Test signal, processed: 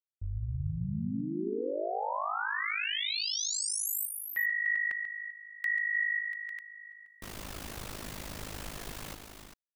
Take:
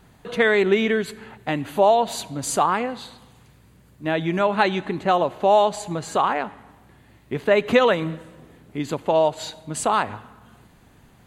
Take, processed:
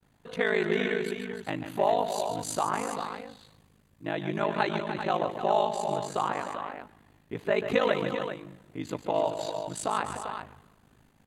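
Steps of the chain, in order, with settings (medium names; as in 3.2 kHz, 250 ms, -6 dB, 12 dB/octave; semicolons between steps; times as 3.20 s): multi-tap echo 140/299/395 ms -9.5/-10/-8.5 dB; ring modulator 26 Hz; expander -51 dBFS; trim -6 dB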